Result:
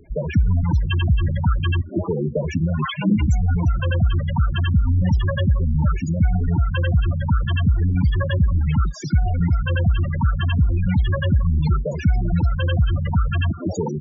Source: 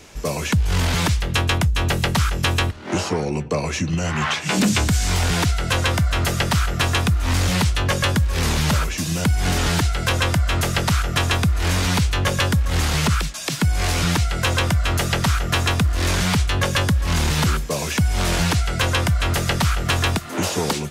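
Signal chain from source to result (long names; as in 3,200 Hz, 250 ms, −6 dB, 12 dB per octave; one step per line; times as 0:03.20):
feedback echo with a high-pass in the loop 104 ms, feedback 49%, high-pass 170 Hz, level −19 dB
spectral peaks only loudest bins 8
phase-vocoder stretch with locked phases 0.67×
level +3 dB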